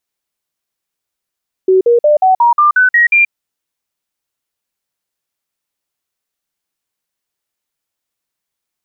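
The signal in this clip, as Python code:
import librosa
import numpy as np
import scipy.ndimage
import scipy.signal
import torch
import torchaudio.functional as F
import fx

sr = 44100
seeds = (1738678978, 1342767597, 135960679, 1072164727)

y = fx.stepped_sweep(sr, from_hz=376.0, direction='up', per_octave=3, tones=9, dwell_s=0.13, gap_s=0.05, level_db=-5.5)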